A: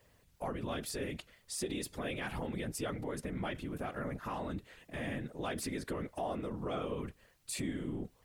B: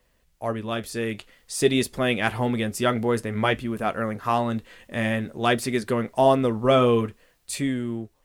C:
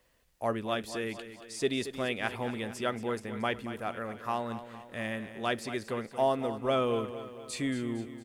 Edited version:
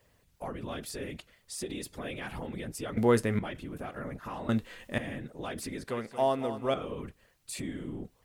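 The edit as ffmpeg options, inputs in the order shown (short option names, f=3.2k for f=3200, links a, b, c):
-filter_complex "[1:a]asplit=2[a][b];[0:a]asplit=4[c][d][e][f];[c]atrim=end=2.972[g];[a]atrim=start=2.968:end=3.392[h];[d]atrim=start=3.388:end=4.492[i];[b]atrim=start=4.488:end=4.982[j];[e]atrim=start=4.978:end=5.882[k];[2:a]atrim=start=5.878:end=6.742[l];[f]atrim=start=6.738[m];[g][h]acrossfade=d=0.004:c1=hsin:c2=hsin[n];[n][i]acrossfade=d=0.004:c1=hsin:c2=hsin[o];[o][j]acrossfade=d=0.004:c1=hsin:c2=hsin[p];[p][k]acrossfade=d=0.004:c1=hsin:c2=hsin[q];[q][l]acrossfade=d=0.004:c1=hsin:c2=hsin[r];[r][m]acrossfade=d=0.004:c1=hsin:c2=hsin"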